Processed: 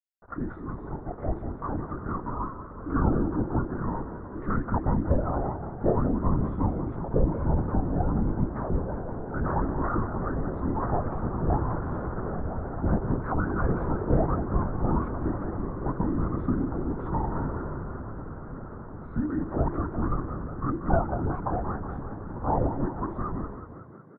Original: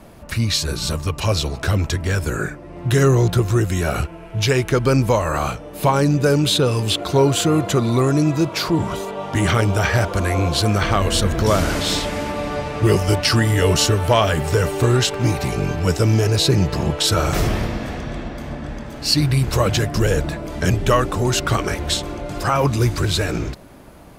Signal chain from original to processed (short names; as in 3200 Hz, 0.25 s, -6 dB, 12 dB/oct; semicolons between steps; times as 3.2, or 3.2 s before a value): HPF 190 Hz 12 dB/oct; frequency shift -440 Hz; bit-crush 6-bit; elliptic low-pass 1400 Hz, stop band 50 dB; LPC vocoder at 8 kHz whisper; on a send: frequency-shifting echo 0.184 s, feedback 63%, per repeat +33 Hz, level -11 dB; on the sum: gain -5.5 dB